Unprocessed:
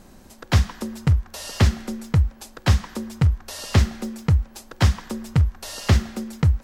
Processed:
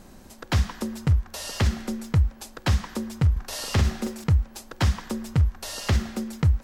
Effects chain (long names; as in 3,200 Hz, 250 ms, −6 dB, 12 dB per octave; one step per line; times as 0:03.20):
0:03.32–0:04.24: double-tracking delay 43 ms −2.5 dB
brickwall limiter −12.5 dBFS, peak gain reduction 8.5 dB